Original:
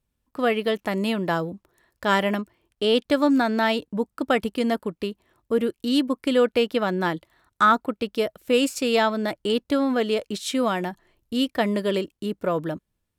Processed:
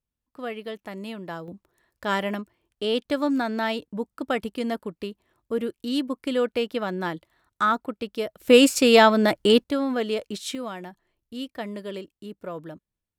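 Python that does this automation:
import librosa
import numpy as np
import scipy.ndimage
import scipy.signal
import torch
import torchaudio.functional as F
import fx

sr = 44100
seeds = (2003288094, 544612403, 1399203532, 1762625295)

y = fx.gain(x, sr, db=fx.steps((0.0, -11.0), (1.48, -4.5), (8.4, 6.0), (9.64, -3.0), (10.55, -10.5)))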